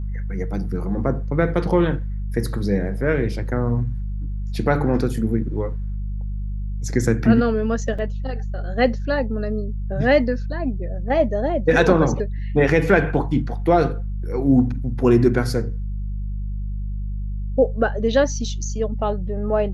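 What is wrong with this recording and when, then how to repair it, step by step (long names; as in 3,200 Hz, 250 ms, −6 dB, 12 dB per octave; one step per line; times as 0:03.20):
mains hum 50 Hz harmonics 4 −26 dBFS
0:07.98–0:07.99: drop-out 5.5 ms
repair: hum removal 50 Hz, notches 4
repair the gap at 0:07.98, 5.5 ms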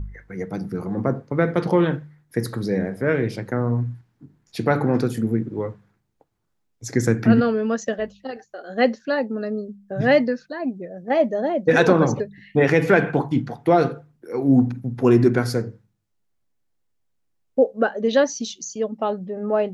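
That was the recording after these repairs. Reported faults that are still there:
none of them is left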